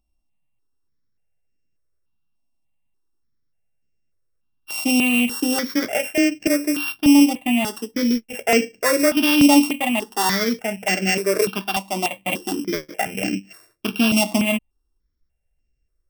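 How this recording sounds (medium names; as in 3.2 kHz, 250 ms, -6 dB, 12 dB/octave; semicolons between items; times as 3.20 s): a buzz of ramps at a fixed pitch in blocks of 16 samples; notches that jump at a steady rate 3.4 Hz 450–3700 Hz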